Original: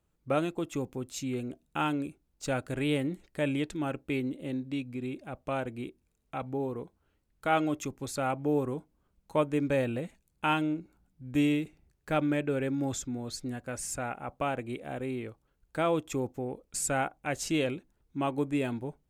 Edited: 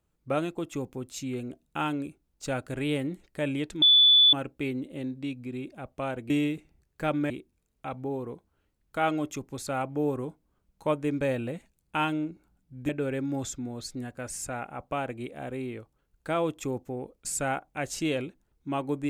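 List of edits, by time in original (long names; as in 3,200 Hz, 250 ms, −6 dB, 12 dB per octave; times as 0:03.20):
0:03.82: insert tone 3,470 Hz −14.5 dBFS 0.51 s
0:11.38–0:12.38: move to 0:05.79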